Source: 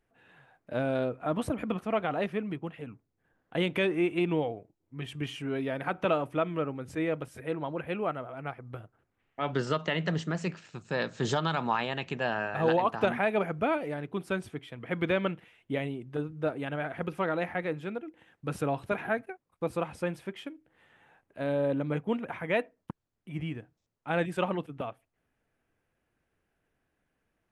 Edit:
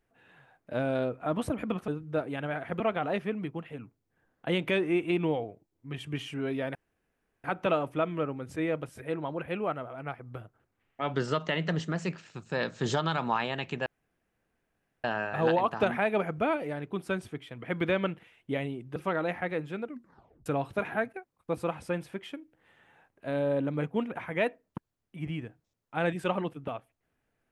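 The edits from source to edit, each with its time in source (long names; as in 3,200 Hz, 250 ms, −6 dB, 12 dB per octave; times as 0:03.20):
0:05.83: splice in room tone 0.69 s
0:12.25: splice in room tone 1.18 s
0:16.17–0:17.09: move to 0:01.88
0:17.97: tape stop 0.62 s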